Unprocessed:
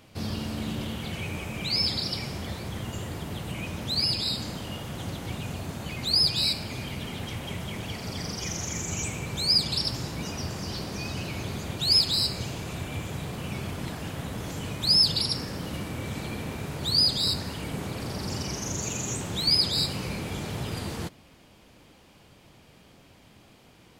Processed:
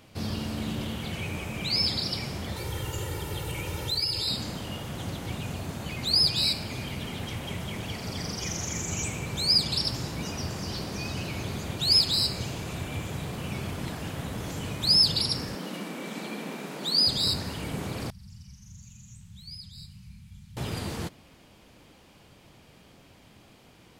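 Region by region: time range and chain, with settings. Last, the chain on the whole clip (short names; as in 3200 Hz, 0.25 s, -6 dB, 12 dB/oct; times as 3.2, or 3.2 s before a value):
2.56–4.28 compressor, threshold -28 dBFS + high shelf 9700 Hz +8.5 dB + comb 2.2 ms, depth 71%
15.55–17.07 brick-wall FIR high-pass 160 Hz + bell 12000 Hz -2.5 dB 1.5 oct
18.1–20.57 elliptic band-stop 210–880 Hz + passive tone stack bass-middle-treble 10-0-1
whole clip: dry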